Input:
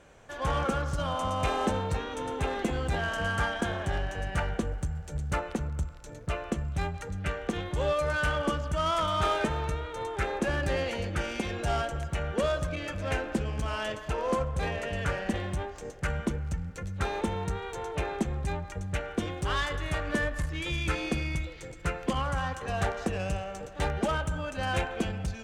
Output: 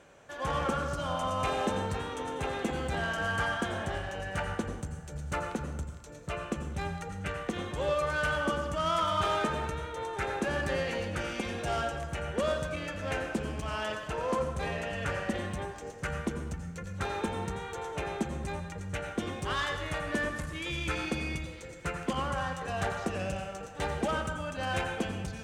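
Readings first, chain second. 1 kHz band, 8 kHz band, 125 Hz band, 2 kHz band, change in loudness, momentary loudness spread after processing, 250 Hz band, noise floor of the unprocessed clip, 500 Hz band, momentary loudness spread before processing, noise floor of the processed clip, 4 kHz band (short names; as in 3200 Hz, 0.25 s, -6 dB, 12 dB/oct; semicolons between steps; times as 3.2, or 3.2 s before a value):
-1.0 dB, -1.0 dB, -4.5 dB, -0.5 dB, -2.0 dB, 8 LU, -2.0 dB, -44 dBFS, -1.5 dB, 7 LU, -44 dBFS, -1.0 dB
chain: HPF 120 Hz 6 dB/oct; reverse; upward compressor, threshold -47 dBFS; reverse; plate-style reverb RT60 0.72 s, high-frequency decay 0.75×, pre-delay 75 ms, DRR 5.5 dB; gain -2 dB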